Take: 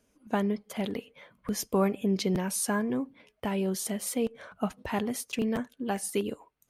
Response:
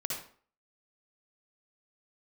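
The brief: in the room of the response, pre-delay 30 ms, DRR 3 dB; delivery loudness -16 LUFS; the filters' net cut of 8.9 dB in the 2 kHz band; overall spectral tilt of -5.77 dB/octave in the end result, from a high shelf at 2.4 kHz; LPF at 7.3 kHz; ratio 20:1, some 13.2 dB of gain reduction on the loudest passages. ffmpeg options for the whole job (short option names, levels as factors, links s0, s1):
-filter_complex "[0:a]lowpass=7300,equalizer=f=2000:t=o:g=-7.5,highshelf=f=2400:g=-8.5,acompressor=threshold=0.0178:ratio=20,asplit=2[s0][s1];[1:a]atrim=start_sample=2205,adelay=30[s2];[s1][s2]afir=irnorm=-1:irlink=0,volume=0.501[s3];[s0][s3]amix=inputs=2:normalize=0,volume=15"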